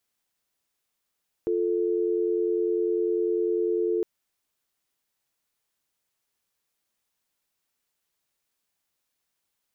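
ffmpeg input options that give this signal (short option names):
-f lavfi -i "aevalsrc='0.0562*(sin(2*PI*350*t)+sin(2*PI*440*t))':d=2.56:s=44100"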